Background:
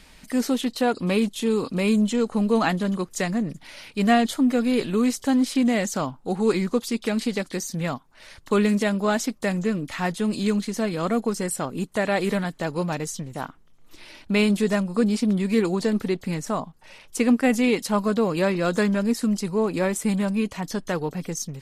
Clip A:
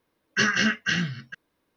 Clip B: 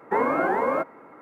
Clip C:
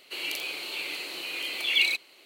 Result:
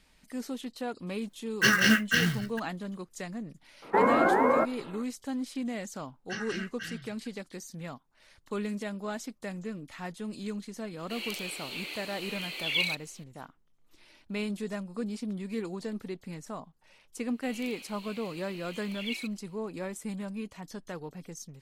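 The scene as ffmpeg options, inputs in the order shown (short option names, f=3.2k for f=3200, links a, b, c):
-filter_complex "[1:a]asplit=2[a][b];[3:a]asplit=2[c][d];[0:a]volume=-13.5dB[e];[a]acrusher=bits=3:mode=log:mix=0:aa=0.000001[f];[2:a]acontrast=36[g];[f]atrim=end=1.76,asetpts=PTS-STARTPTS,volume=-0.5dB,afade=t=in:d=0.004:c=hsin,afade=t=out:st=1.756:d=0.004:c=hsin,adelay=1250[h];[g]atrim=end=1.21,asetpts=PTS-STARTPTS,volume=-5.5dB,afade=t=in:d=0.004:c=hsin,afade=t=out:st=1.206:d=0.004:c=hsin,adelay=3820[i];[b]atrim=end=1.76,asetpts=PTS-STARTPTS,volume=-16dB,afade=t=in:d=0.004:c=hsin,afade=t=out:st=1.756:d=0.004:c=hsin,adelay=261513S[j];[c]atrim=end=2.25,asetpts=PTS-STARTPTS,volume=-5dB,afade=t=in:d=0.004:c=hsin,afade=t=out:st=2.246:d=0.004:c=hsin,adelay=10990[k];[d]atrim=end=2.25,asetpts=PTS-STARTPTS,volume=-14.5dB,afade=t=in:d=0.004:c=hsin,afade=t=out:st=2.246:d=0.004:c=hsin,adelay=17310[l];[e][h][i][j][k][l]amix=inputs=6:normalize=0"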